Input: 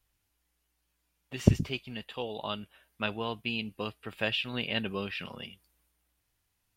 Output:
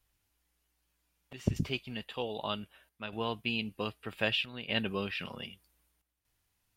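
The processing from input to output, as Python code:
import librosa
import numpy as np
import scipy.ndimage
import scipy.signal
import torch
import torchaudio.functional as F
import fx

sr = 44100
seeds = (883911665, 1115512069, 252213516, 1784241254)

y = fx.chopper(x, sr, hz=0.64, depth_pct=65, duty_pct=85)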